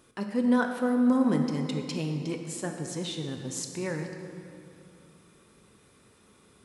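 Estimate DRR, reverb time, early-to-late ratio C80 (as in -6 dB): 4.0 dB, 2.7 s, 6.0 dB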